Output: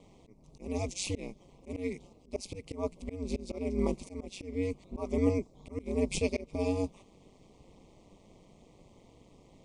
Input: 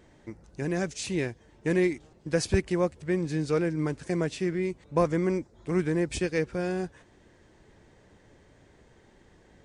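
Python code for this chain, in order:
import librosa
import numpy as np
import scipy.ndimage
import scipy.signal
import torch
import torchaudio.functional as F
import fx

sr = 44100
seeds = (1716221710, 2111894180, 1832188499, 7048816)

y = scipy.signal.sosfilt(scipy.signal.cheby1(3, 1.0, [1100.0, 2200.0], 'bandstop', fs=sr, output='sos'), x)
y = y * np.sin(2.0 * np.pi * 96.0 * np.arange(len(y)) / sr)
y = fx.auto_swell(y, sr, attack_ms=271.0)
y = y * 10.0 ** (3.0 / 20.0)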